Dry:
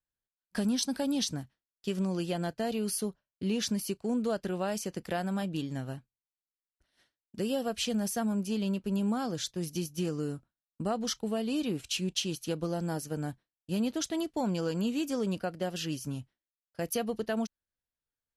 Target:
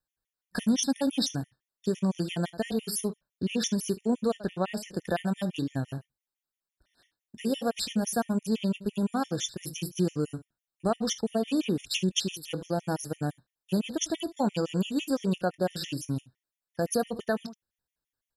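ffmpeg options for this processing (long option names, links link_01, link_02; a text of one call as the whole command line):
ffmpeg -i in.wav -filter_complex "[0:a]asettb=1/sr,asplit=3[link_01][link_02][link_03];[link_01]atrim=end=4.334[link_04];[link_02]atrim=start=4.33:end=4.88,asetpts=PTS-STARTPTS,afade=type=in:duration=0.004:curve=qsin,afade=type=out:start_time=0.546:duration=0.004:curve=qsin,highshelf=frequency=7900:gain=-11[link_05];[link_03]atrim=start=4.876[link_06];[link_04][link_05]acrossfade=duration=0.004:curve1=hsin:curve2=qsin[link_07];[link_07][link_06]acrossfade=duration=0.004:curve1=qsin:curve2=hsin,aecho=1:1:22|74:0.188|0.141,afftfilt=real='re*gt(sin(2*PI*5.9*pts/sr)*(1-2*mod(floor(b*sr/1024/1800),2)),0)':imag='im*gt(sin(2*PI*5.9*pts/sr)*(1-2*mod(floor(b*sr/1024/1800),2)),0)':win_size=1024:overlap=0.75,volume=5.5dB" out.wav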